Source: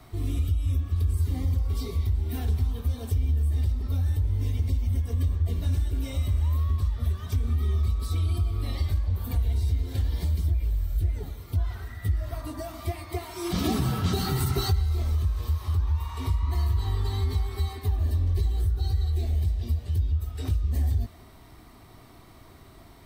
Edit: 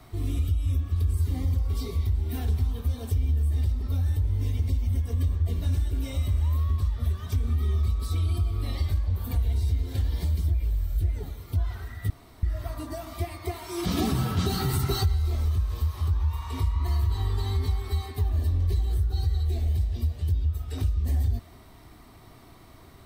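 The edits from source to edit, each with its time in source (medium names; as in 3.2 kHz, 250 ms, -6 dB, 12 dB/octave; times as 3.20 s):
12.10 s: insert room tone 0.33 s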